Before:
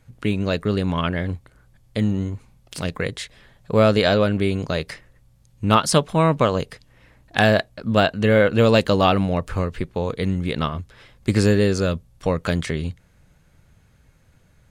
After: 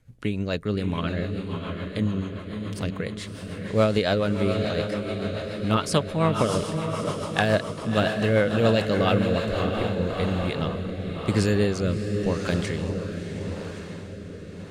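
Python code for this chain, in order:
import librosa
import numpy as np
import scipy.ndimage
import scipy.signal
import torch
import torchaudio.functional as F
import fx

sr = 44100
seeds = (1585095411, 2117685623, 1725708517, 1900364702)

y = fx.echo_diffused(x, sr, ms=646, feedback_pct=60, wet_db=-5.0)
y = fx.rotary_switch(y, sr, hz=7.0, then_hz=0.9, switch_at_s=9.24)
y = y * 10.0 ** (-3.5 / 20.0)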